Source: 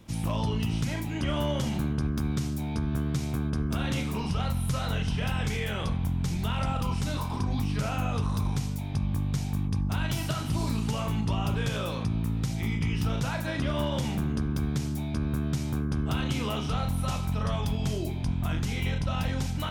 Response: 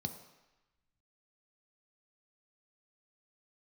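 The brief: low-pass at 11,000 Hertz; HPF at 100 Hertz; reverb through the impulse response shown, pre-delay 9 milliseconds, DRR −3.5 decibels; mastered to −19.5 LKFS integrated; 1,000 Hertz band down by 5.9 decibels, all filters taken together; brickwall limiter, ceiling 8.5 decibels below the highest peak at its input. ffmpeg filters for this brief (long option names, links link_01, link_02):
-filter_complex "[0:a]highpass=100,lowpass=11000,equalizer=frequency=1000:width_type=o:gain=-8,alimiter=level_in=2.5dB:limit=-24dB:level=0:latency=1,volume=-2.5dB,asplit=2[link_01][link_02];[1:a]atrim=start_sample=2205,adelay=9[link_03];[link_02][link_03]afir=irnorm=-1:irlink=0,volume=4dB[link_04];[link_01][link_04]amix=inputs=2:normalize=0,volume=3dB"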